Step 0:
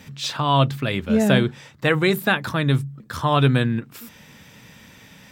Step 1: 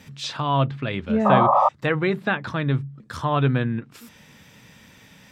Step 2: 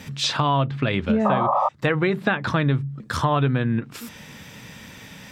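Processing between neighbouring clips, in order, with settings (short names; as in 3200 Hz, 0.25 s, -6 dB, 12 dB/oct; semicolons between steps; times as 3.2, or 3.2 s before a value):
treble ducked by the level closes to 2500 Hz, closed at -17 dBFS; painted sound noise, 1.25–1.69, 530–1300 Hz -14 dBFS; gain -3 dB
compressor 8:1, threshold -25 dBFS, peak gain reduction 14.5 dB; gain +8 dB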